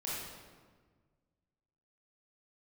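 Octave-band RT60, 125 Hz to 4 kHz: 2.2, 1.9, 1.6, 1.4, 1.2, 1.0 s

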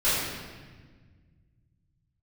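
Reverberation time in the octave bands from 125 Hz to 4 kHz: 3.4, 2.4, 1.6, 1.4, 1.4, 1.2 s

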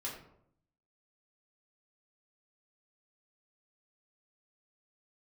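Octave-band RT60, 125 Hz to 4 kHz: 0.95, 0.85, 0.75, 0.65, 0.50, 0.40 s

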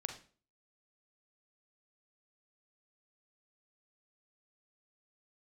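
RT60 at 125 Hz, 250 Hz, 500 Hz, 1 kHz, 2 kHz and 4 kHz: 0.45, 0.50, 0.45, 0.40, 0.35, 0.35 s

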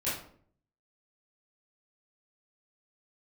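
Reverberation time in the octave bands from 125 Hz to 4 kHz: 0.80, 0.70, 0.60, 0.50, 0.40, 0.35 s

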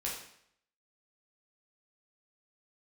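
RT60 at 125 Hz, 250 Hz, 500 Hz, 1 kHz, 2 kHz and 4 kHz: 0.70, 0.65, 0.70, 0.70, 0.65, 0.65 s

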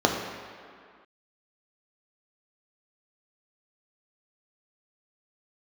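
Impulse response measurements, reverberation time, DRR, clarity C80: not exponential, 0.5 dB, 5.0 dB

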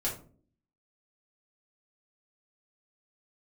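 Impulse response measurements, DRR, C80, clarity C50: -6.0 dB, 13.0 dB, 7.5 dB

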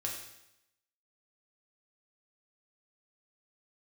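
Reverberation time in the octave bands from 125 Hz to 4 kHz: 0.90, 0.85, 0.85, 0.85, 0.85, 0.85 s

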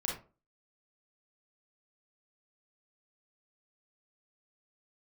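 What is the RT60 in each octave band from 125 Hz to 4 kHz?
0.40, 0.40, 0.40, 0.30, 0.25, 0.20 s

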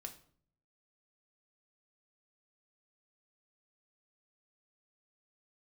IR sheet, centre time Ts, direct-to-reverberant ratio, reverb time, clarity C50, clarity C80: 10 ms, 4.5 dB, 0.55 s, 13.0 dB, 16.5 dB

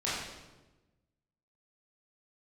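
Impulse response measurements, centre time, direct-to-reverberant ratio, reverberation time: 77 ms, -10.0 dB, 1.1 s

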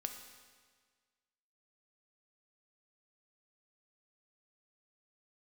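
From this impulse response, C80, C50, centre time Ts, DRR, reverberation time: 8.5 dB, 7.0 dB, 30 ms, 5.0 dB, 1.6 s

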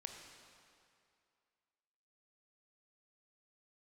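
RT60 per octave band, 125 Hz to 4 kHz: 2.1, 2.3, 2.4, 2.5, 2.3, 2.0 s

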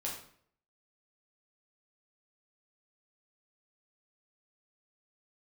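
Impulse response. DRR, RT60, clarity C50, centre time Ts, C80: -4.0 dB, 0.60 s, 5.0 dB, 34 ms, 8.5 dB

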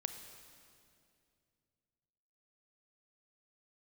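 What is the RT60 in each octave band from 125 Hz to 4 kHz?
3.4, 3.0, 2.7, 2.2, 2.2, 2.1 s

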